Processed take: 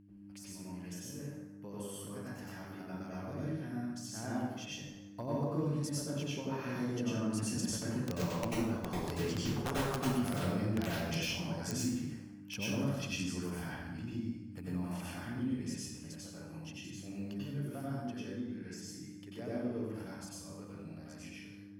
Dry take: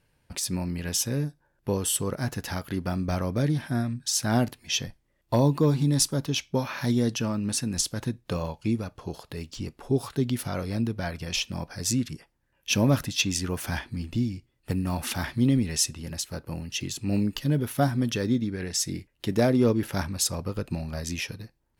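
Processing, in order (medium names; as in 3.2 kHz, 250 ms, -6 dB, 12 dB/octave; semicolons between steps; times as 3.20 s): Doppler pass-by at 9.53 s, 9 m/s, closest 4.9 m; high-pass 53 Hz 12 dB/octave; treble shelf 2.9 kHz -6 dB; band-stop 3.8 kHz, Q 5.9; compression 8:1, threshold -37 dBFS, peak gain reduction 18 dB; mains buzz 100 Hz, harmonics 3, -61 dBFS 0 dB/octave; integer overflow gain 30 dB; plate-style reverb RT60 1 s, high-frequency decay 0.65×, pre-delay 80 ms, DRR -7.5 dB; tape noise reduction on one side only encoder only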